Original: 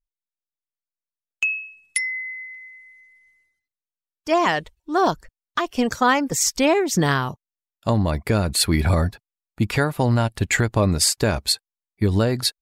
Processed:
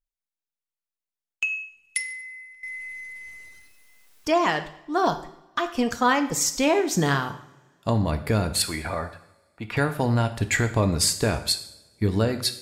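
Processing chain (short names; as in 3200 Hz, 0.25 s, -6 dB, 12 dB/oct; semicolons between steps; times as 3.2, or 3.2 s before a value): 8.62–9.77 three-band isolator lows -13 dB, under 450 Hz, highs -15 dB, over 3200 Hz; two-slope reverb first 0.68 s, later 2.4 s, from -24 dB, DRR 7.5 dB; 2.63–4.38 fast leveller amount 50%; gain -3.5 dB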